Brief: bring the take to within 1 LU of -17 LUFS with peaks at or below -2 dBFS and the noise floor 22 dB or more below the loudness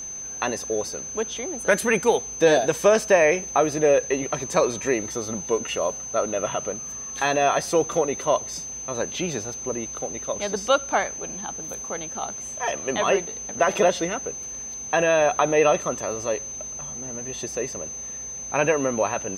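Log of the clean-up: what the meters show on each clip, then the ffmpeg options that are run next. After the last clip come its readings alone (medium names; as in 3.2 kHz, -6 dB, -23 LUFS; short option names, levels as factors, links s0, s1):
steady tone 6.2 kHz; tone level -32 dBFS; loudness -24.0 LUFS; peak level -4.5 dBFS; loudness target -17.0 LUFS
-> -af "bandreject=f=6200:w=30"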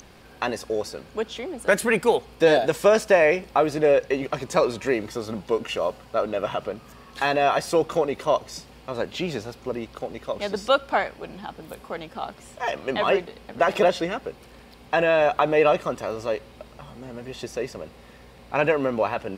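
steady tone not found; loudness -24.0 LUFS; peak level -5.0 dBFS; loudness target -17.0 LUFS
-> -af "volume=2.24,alimiter=limit=0.794:level=0:latency=1"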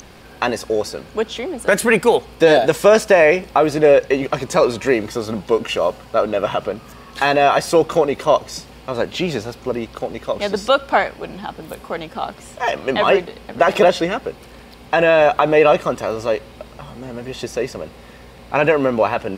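loudness -17.5 LUFS; peak level -2.0 dBFS; noise floor -42 dBFS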